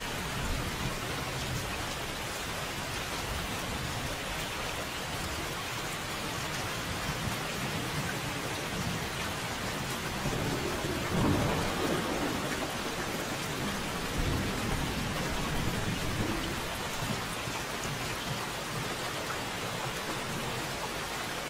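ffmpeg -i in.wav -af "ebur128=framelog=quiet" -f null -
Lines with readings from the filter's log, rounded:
Integrated loudness:
  I:         -33.2 LUFS
  Threshold: -43.2 LUFS
Loudness range:
  LRA:         3.0 LU
  Threshold: -53.1 LUFS
  LRA low:   -34.3 LUFS
  LRA high:  -31.3 LUFS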